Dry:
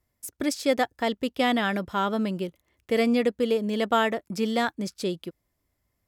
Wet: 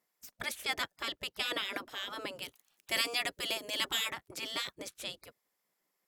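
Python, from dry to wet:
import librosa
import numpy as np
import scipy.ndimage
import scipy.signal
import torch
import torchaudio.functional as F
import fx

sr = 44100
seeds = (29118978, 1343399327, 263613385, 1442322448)

y = fx.spec_gate(x, sr, threshold_db=-15, keep='weak')
y = fx.high_shelf(y, sr, hz=3300.0, db=9.0, at=(2.42, 4.11))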